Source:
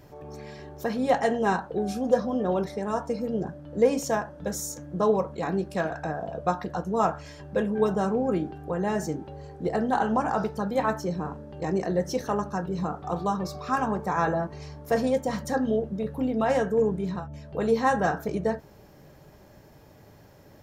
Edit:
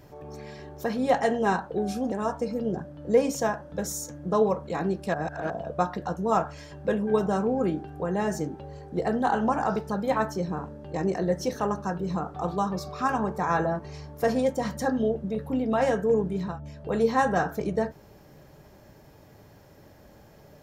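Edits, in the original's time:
2.12–2.8 cut
5.82–6.18 reverse

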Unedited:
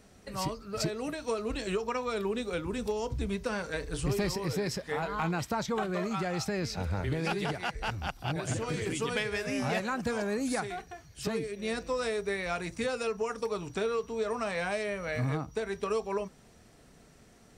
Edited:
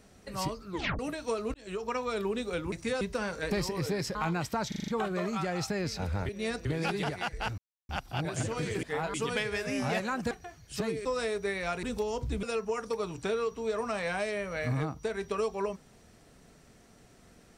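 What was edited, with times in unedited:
0.69 tape stop 0.30 s
1.54–1.92 fade in
2.72–3.32 swap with 12.66–12.95
3.82–4.18 cut
4.82–5.13 move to 8.94
5.66 stutter 0.04 s, 6 plays
8 insert silence 0.31 s
10.11–10.78 cut
11.52–11.88 move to 7.07

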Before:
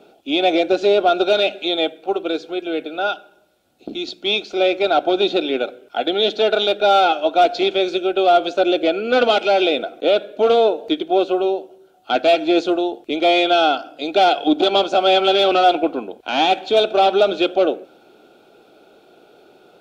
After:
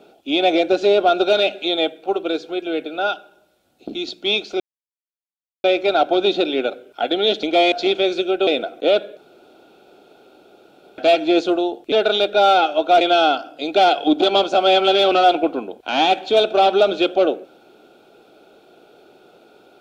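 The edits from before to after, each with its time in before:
4.6 insert silence 1.04 s
6.39–7.48 swap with 13.12–13.41
8.23–9.67 cut
10.37–12.18 room tone

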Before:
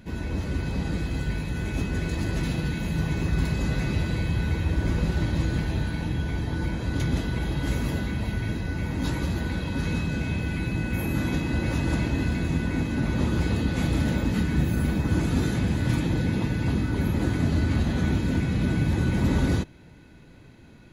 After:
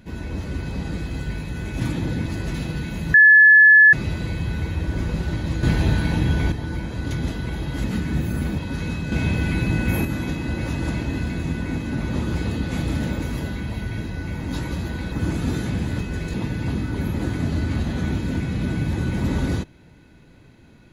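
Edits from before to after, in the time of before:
1.8–2.15 swap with 15.88–16.34
3.03–3.82 bleep 1720 Hz -7 dBFS
5.52–6.41 gain +7.5 dB
7.73–9.63 swap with 14.27–15.01
10.17–11.1 gain +6 dB

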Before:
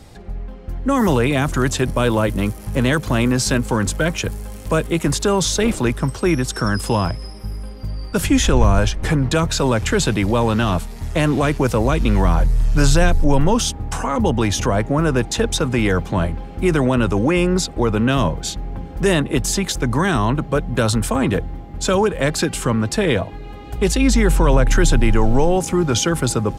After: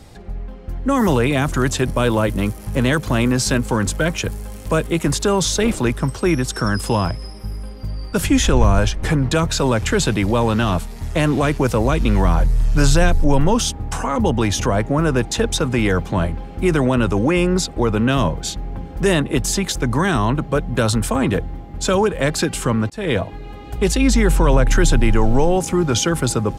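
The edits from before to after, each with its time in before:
22.9–23.16 fade in

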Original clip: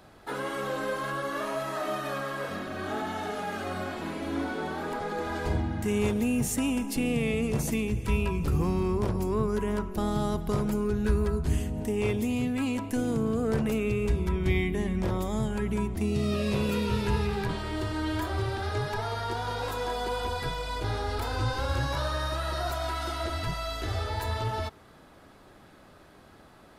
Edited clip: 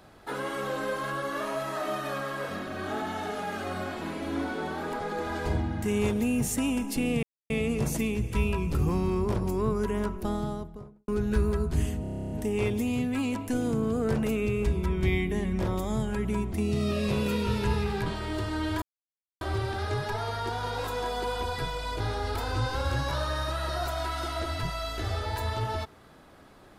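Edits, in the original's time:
7.23 insert silence 0.27 s
9.79–10.81 studio fade out
11.74 stutter 0.03 s, 11 plays
18.25 insert silence 0.59 s

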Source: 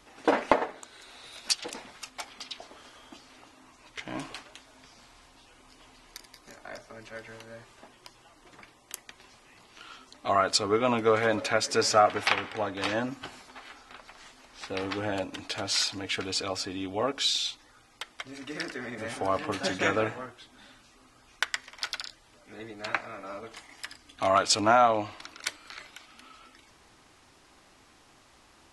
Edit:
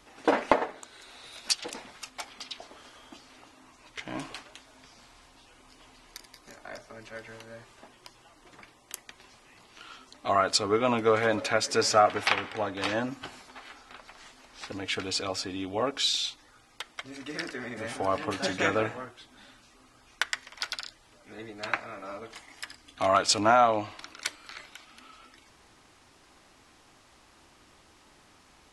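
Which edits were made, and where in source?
14.72–15.93 cut

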